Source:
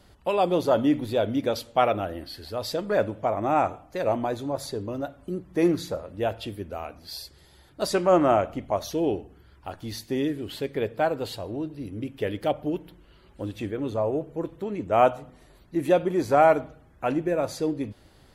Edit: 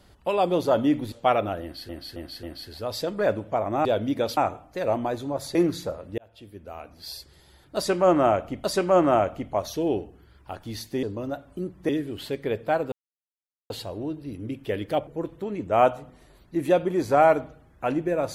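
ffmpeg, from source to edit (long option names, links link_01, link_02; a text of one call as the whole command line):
ffmpeg -i in.wav -filter_complex "[0:a]asplit=14[link_01][link_02][link_03][link_04][link_05][link_06][link_07][link_08][link_09][link_10][link_11][link_12][link_13][link_14];[link_01]atrim=end=1.122[link_15];[link_02]atrim=start=1.638:end=2.412[link_16];[link_03]atrim=start=2.138:end=2.412[link_17];[link_04]atrim=start=2.138:end=2.412[link_18];[link_05]atrim=start=2.138:end=3.562[link_19];[link_06]atrim=start=1.118:end=1.642[link_20];[link_07]atrim=start=3.558:end=4.742[link_21];[link_08]atrim=start=5.598:end=6.23,asetpts=PTS-STARTPTS,afade=type=out:start_time=0.628:duration=0.004:curve=hsin[link_22];[link_09]atrim=start=6.23:end=8.692,asetpts=PTS-STARTPTS,afade=type=in:duration=0.96[link_23];[link_10]atrim=start=7.808:end=10.202[link_24];[link_11]atrim=start=4.738:end=5.602[link_25];[link_12]atrim=start=10.198:end=11.23,asetpts=PTS-STARTPTS,afade=type=out:start_time=1.028:duration=0.004:curve=hsin,apad=pad_dur=0.78[link_26];[link_13]atrim=start=11.23:end=12.602,asetpts=PTS-STARTPTS,afade=type=in:duration=0.004:curve=hsin[link_27];[link_14]atrim=start=14.268[link_28];[link_15][link_16]acrossfade=duration=0.004:curve1=hsin:curve2=hsin[link_29];[link_29][link_17]acrossfade=duration=0.004:curve1=hsin:curve2=hsin[link_30];[link_30][link_18]acrossfade=duration=0.004:curve1=hsin:curve2=hsin[link_31];[link_31][link_19]acrossfade=duration=0.004:curve1=hsin:curve2=hsin[link_32];[link_32][link_20]acrossfade=duration=0.004:curve1=hsin:curve2=hsin[link_33];[link_33][link_21]acrossfade=duration=0.004:curve1=hsin:curve2=hsin[link_34];[link_22][link_23]concat=n=2:v=0:a=1[link_35];[link_34][link_35]acrossfade=duration=0.004:curve1=hsin:curve2=hsin[link_36];[link_36][link_24]acrossfade=duration=0.004:curve1=hsin:curve2=hsin[link_37];[link_37][link_25]acrossfade=duration=0.004:curve1=hsin:curve2=hsin[link_38];[link_26][link_27]concat=n=2:v=0:a=1[link_39];[link_38][link_39]acrossfade=duration=0.004:curve1=hsin:curve2=hsin[link_40];[link_40][link_28]acrossfade=duration=0.004:curve1=hsin:curve2=hsin" out.wav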